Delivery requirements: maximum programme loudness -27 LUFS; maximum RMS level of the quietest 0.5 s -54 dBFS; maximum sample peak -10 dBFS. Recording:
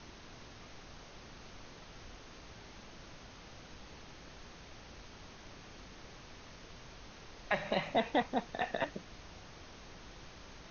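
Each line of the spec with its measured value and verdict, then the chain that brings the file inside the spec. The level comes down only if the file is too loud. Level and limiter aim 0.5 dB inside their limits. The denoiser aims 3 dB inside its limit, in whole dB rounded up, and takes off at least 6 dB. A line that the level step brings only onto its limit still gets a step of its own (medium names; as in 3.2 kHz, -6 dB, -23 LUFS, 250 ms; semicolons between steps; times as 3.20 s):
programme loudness -42.5 LUFS: pass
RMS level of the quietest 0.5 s -52 dBFS: fail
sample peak -17.0 dBFS: pass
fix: noise reduction 6 dB, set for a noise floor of -52 dBFS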